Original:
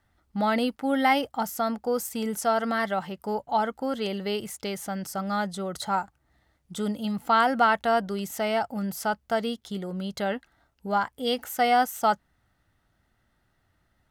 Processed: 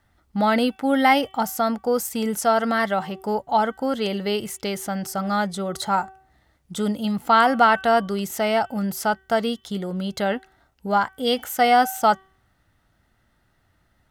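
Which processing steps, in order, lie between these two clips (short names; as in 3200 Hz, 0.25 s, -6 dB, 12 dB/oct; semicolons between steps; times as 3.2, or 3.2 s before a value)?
de-hum 381.9 Hz, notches 9; gain +5 dB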